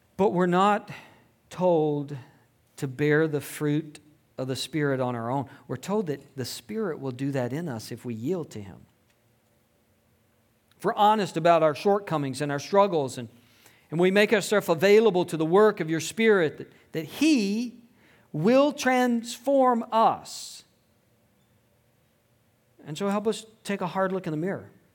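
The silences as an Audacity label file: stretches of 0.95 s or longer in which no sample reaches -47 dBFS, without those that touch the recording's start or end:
8.840000	10.720000	silence
20.620000	22.790000	silence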